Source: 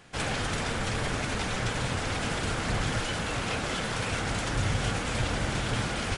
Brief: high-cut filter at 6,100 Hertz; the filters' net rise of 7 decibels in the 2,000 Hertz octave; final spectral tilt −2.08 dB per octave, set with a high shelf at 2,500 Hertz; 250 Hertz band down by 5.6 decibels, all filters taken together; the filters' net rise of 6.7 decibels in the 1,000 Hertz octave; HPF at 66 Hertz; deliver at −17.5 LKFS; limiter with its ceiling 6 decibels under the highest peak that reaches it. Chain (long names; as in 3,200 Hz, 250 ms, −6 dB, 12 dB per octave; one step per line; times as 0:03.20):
high-pass filter 66 Hz
low-pass filter 6,100 Hz
parametric band 250 Hz −8.5 dB
parametric band 1,000 Hz +7.5 dB
parametric band 2,000 Hz +9 dB
high-shelf EQ 2,500 Hz −5.5 dB
level +11 dB
brickwall limiter −9 dBFS